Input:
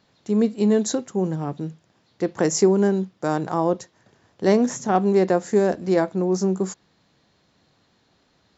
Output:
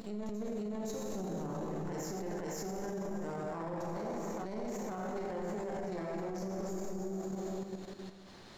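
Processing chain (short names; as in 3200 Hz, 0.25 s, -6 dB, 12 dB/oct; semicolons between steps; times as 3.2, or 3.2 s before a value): half-wave gain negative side -12 dB; reverse echo 0.516 s -12.5 dB; plate-style reverb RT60 2.4 s, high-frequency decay 0.8×, DRR -3 dB; level quantiser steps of 9 dB; limiter -41 dBFS, peak gain reduction 34.5 dB; gain +9.5 dB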